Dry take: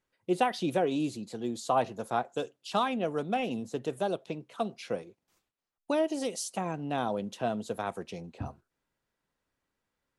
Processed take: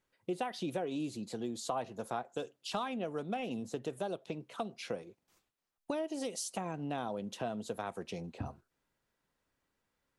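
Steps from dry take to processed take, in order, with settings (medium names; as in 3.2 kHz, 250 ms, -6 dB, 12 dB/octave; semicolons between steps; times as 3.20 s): compression 3:1, threshold -37 dBFS, peak gain reduction 12.5 dB; trim +1 dB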